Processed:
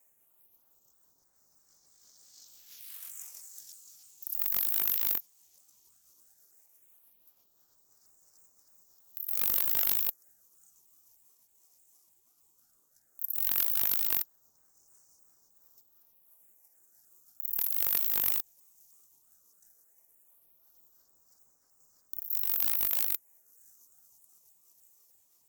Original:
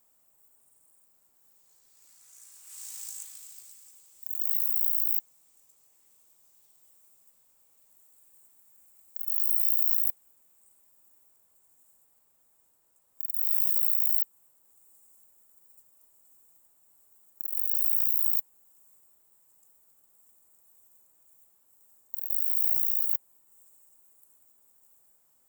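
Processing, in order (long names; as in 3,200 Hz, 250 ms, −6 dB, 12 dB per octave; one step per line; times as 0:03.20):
pitch shifter swept by a sawtooth −4.5 semitones, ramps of 310 ms
all-pass phaser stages 4, 0.15 Hz, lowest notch 130–3,000 Hz
in parallel at −3 dB: wrap-around overflow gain 19 dB
on the sum: ring modulator whose carrier an LFO sweeps 570 Hz, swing 40%, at 3 Hz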